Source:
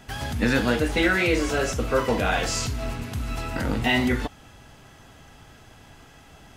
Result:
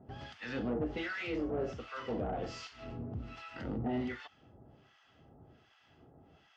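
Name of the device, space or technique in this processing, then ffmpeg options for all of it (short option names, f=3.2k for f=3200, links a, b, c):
guitar amplifier with harmonic tremolo: -filter_complex "[0:a]acrossover=split=1000[a][b];[a]aeval=exprs='val(0)*(1-1/2+1/2*cos(2*PI*1.3*n/s))':c=same[c];[b]aeval=exprs='val(0)*(1-1/2-1/2*cos(2*PI*1.3*n/s))':c=same[d];[c][d]amix=inputs=2:normalize=0,asoftclip=type=tanh:threshold=-23.5dB,highpass=80,equalizer=f=360:t=q:w=4:g=4,equalizer=f=1k:t=q:w=4:g=-7,equalizer=f=1.6k:t=q:w=4:g=-6,equalizer=f=2.3k:t=q:w=4:g=-7,equalizer=f=3.9k:t=q:w=4:g=-9,lowpass=f=4.2k:w=0.5412,lowpass=f=4.2k:w=1.3066,volume=-5.5dB"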